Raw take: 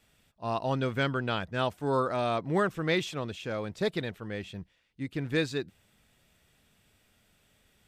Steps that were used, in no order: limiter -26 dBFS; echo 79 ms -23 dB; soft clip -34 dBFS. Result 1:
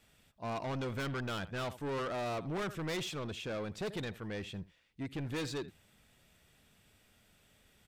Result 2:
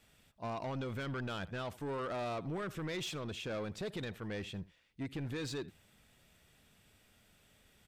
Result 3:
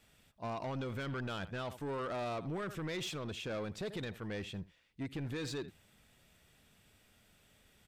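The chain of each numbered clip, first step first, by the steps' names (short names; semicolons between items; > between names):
echo > soft clip > limiter; limiter > echo > soft clip; echo > limiter > soft clip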